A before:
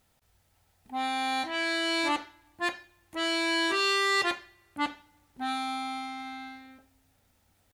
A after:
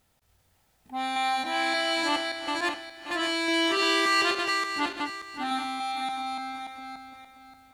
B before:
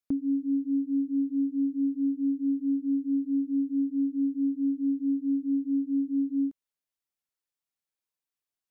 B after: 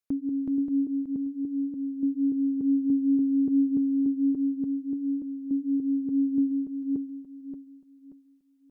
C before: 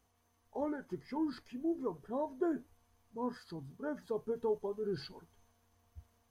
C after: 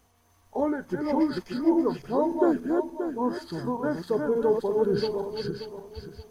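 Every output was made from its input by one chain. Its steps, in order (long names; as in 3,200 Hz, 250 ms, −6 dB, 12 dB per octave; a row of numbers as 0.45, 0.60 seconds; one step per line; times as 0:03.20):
feedback delay that plays each chunk backwards 290 ms, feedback 54%, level −3 dB
loudness normalisation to −27 LKFS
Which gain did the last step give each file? +0.5, −0.5, +10.5 decibels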